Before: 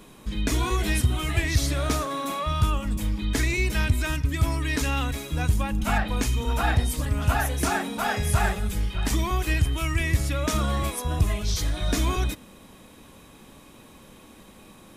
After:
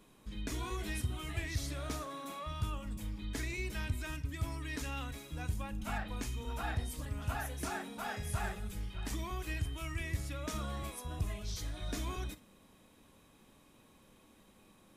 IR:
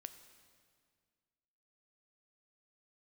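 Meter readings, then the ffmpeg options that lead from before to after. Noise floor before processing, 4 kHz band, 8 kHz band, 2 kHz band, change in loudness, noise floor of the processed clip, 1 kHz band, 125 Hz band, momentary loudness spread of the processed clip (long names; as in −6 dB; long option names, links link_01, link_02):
−50 dBFS, −14.0 dB, −14.0 dB, −13.5 dB, −14.0 dB, −64 dBFS, −14.0 dB, −14.0 dB, 4 LU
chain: -filter_complex "[1:a]atrim=start_sample=2205,atrim=end_sample=3087[link_01];[0:a][link_01]afir=irnorm=-1:irlink=0,volume=-8dB"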